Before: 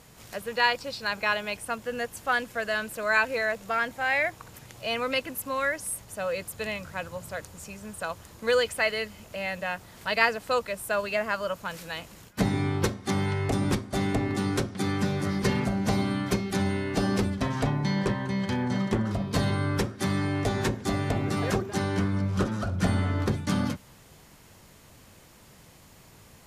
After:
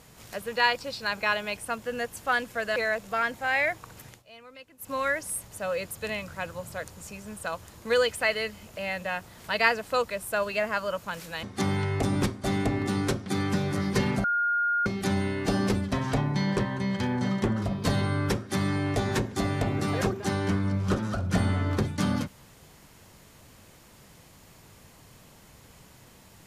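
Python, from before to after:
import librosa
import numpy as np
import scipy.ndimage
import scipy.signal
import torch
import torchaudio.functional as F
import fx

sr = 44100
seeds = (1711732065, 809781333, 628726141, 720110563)

y = fx.edit(x, sr, fx.cut(start_s=2.76, length_s=0.57),
    fx.fade_down_up(start_s=4.66, length_s=0.83, db=-20.0, fade_s=0.14),
    fx.cut(start_s=12.0, length_s=0.92),
    fx.bleep(start_s=15.73, length_s=0.62, hz=1420.0, db=-22.5), tone=tone)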